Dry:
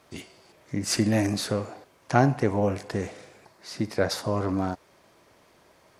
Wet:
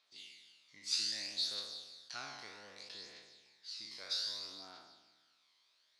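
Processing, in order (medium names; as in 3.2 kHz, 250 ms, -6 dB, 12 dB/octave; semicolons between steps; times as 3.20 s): spectral sustain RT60 1.57 s; phaser 0.63 Hz, delay 1 ms, feedback 41%; band-pass filter 4 kHz, Q 3.6; trim -5 dB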